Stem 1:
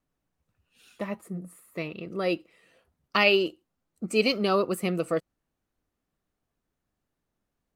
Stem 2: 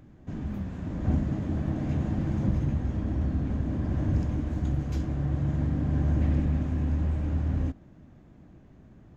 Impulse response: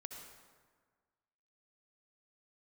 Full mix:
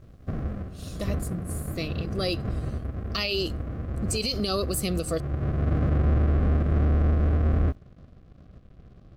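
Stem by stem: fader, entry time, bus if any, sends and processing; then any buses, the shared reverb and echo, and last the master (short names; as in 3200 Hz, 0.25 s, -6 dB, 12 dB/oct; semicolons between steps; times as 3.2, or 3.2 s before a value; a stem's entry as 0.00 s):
-0.5 dB, 0.00 s, no send, resonant high shelf 3100 Hz +12 dB, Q 1.5
0.0 dB, 0.00 s, no send, half-waves squared off; LPF 1400 Hz 12 dB/oct; crossover distortion -54 dBFS; auto duck -10 dB, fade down 0.45 s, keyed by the first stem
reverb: off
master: Butterworth band-stop 900 Hz, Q 4; low shelf 140 Hz +4.5 dB; limiter -17.5 dBFS, peak gain reduction 14 dB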